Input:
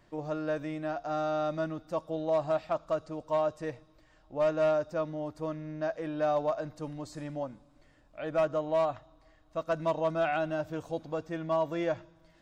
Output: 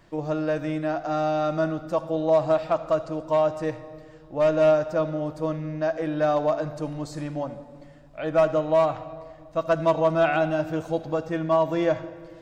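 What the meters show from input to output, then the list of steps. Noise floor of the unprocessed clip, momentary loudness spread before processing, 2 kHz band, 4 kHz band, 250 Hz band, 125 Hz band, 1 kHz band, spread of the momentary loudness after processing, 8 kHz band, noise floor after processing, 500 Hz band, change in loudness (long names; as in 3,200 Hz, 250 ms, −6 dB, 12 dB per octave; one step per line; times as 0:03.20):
−63 dBFS, 11 LU, +7.0 dB, +7.0 dB, +8.5 dB, +9.0 dB, +7.0 dB, 12 LU, can't be measured, −48 dBFS, +7.5 dB, +7.5 dB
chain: rectangular room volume 2,900 cubic metres, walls mixed, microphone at 0.68 metres
level +6.5 dB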